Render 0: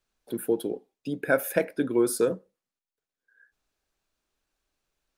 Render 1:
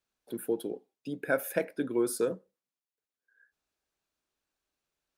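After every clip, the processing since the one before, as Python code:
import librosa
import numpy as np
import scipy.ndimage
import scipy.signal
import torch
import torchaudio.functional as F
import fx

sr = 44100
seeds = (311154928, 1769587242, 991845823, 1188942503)

y = fx.highpass(x, sr, hz=85.0, slope=6)
y = F.gain(torch.from_numpy(y), -5.0).numpy()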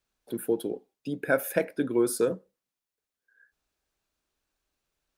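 y = fx.low_shelf(x, sr, hz=68.0, db=10.5)
y = F.gain(torch.from_numpy(y), 3.5).numpy()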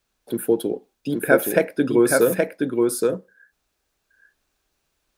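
y = x + 10.0 ** (-3.0 / 20.0) * np.pad(x, (int(822 * sr / 1000.0), 0))[:len(x)]
y = F.gain(torch.from_numpy(y), 7.5).numpy()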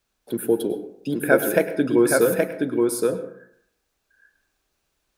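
y = fx.rev_plate(x, sr, seeds[0], rt60_s=0.65, hf_ratio=0.45, predelay_ms=90, drr_db=12.0)
y = F.gain(torch.from_numpy(y), -1.0).numpy()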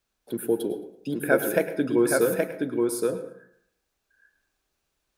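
y = fx.echo_feedback(x, sr, ms=110, feedback_pct=30, wet_db=-19)
y = F.gain(torch.from_numpy(y), -4.0).numpy()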